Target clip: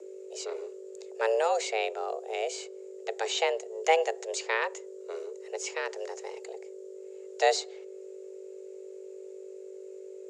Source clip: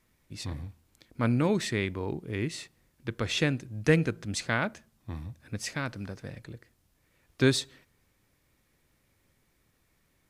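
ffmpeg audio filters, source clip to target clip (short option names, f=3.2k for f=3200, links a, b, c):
-filter_complex "[0:a]aeval=exprs='val(0)+0.00794*(sin(2*PI*50*n/s)+sin(2*PI*2*50*n/s)/2+sin(2*PI*3*50*n/s)/3+sin(2*PI*4*50*n/s)/4+sin(2*PI*5*50*n/s)/5)':c=same,lowpass=f=6.8k:t=q:w=9.4,afreqshift=330,acrossover=split=110|890|4500[a][b][c][d];[d]acompressor=threshold=-43dB:ratio=6[e];[a][b][c][e]amix=inputs=4:normalize=0,volume=-1dB"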